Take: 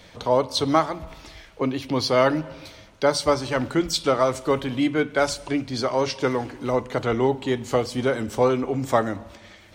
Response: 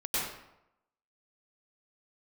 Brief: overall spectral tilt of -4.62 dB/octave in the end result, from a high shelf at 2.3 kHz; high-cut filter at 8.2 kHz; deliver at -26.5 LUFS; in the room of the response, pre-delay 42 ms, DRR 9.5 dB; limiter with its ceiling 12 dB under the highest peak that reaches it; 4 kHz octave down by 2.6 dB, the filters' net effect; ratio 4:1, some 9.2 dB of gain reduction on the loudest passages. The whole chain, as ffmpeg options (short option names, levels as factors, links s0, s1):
-filter_complex "[0:a]lowpass=8200,highshelf=f=2300:g=6.5,equalizer=f=4000:t=o:g=-9,acompressor=threshold=0.0562:ratio=4,alimiter=limit=0.0631:level=0:latency=1,asplit=2[s0][s1];[1:a]atrim=start_sample=2205,adelay=42[s2];[s1][s2]afir=irnorm=-1:irlink=0,volume=0.133[s3];[s0][s3]amix=inputs=2:normalize=0,volume=2.37"